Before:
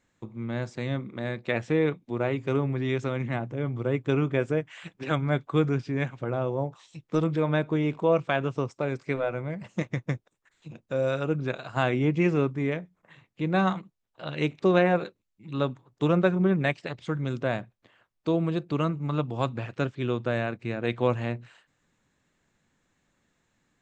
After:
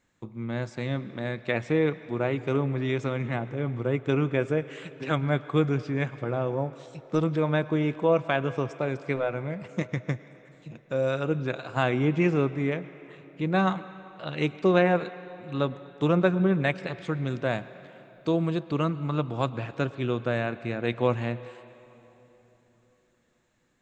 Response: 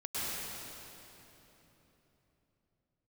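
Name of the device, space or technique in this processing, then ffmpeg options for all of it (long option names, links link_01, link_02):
filtered reverb send: -filter_complex "[0:a]asplit=2[link_01][link_02];[link_02]highpass=frequency=470:poles=1,lowpass=5600[link_03];[1:a]atrim=start_sample=2205[link_04];[link_03][link_04]afir=irnorm=-1:irlink=0,volume=-19dB[link_05];[link_01][link_05]amix=inputs=2:normalize=0,asettb=1/sr,asplit=3[link_06][link_07][link_08];[link_06]atrim=end=17.434[link_09];[link_07]atrim=start=17.43:end=18.57,asetpts=PTS-STARTPTS,afade=type=in:duration=0.004:curve=qsin,afade=type=out:start_time=1.136:duration=0.004:curve=qsin,highshelf=frequency=5500:gain=6[link_10];[link_08]atrim=start=18.566[link_11];[link_09][link_10]acrossfade=duration=0.004:curve1=hsin:curve2=qsin[link_12];[link_12][link_11]acrossfade=duration=0.004:curve1=qsin:curve2=hsin"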